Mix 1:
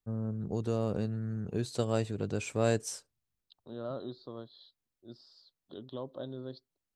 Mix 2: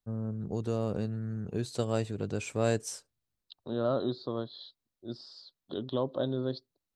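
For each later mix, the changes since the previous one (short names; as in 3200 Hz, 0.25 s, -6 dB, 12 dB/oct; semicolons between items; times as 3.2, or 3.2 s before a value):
second voice +9.5 dB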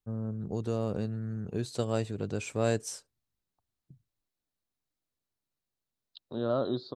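second voice: entry +2.65 s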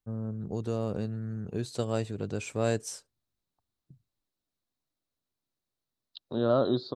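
second voice +4.5 dB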